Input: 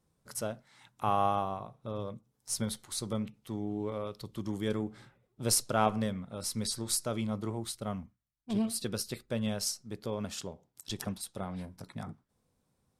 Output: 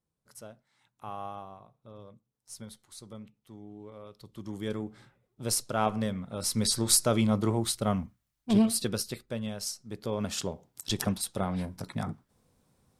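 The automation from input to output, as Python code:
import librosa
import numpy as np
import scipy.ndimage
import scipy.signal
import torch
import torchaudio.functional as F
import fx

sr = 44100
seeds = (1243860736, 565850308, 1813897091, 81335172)

y = fx.gain(x, sr, db=fx.line((3.92, -11.0), (4.63, -1.5), (5.69, -1.5), (6.84, 8.5), (8.54, 8.5), (9.53, -3.5), (10.47, 7.5)))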